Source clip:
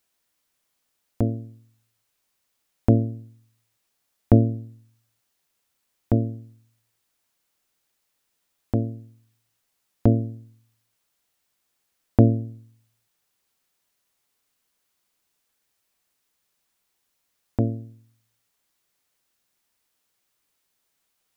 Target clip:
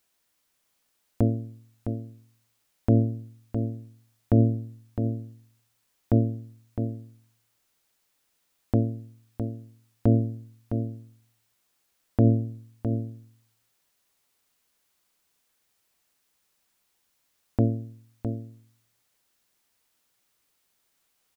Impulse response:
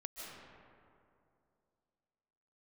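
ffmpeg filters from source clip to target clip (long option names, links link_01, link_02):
-af "alimiter=limit=-11.5dB:level=0:latency=1:release=53,aecho=1:1:660:0.398,volume=1.5dB"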